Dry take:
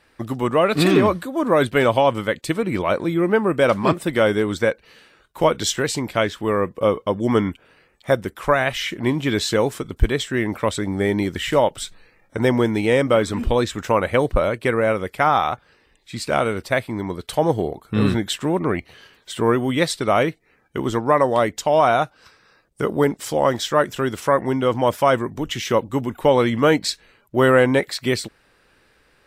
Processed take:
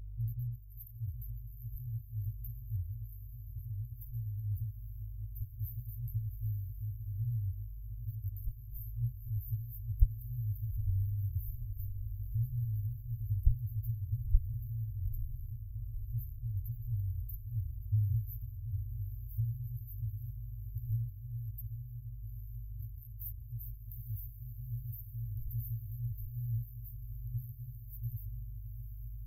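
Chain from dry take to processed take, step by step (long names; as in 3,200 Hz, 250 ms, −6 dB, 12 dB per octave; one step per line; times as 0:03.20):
mains hum 50 Hz, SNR 24 dB
downward compressor, threshold −21 dBFS, peak gain reduction 12 dB
feedback delay with all-pass diffusion 872 ms, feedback 63%, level −9 dB
brick-wall band-stop 120–12,000 Hz
level +1 dB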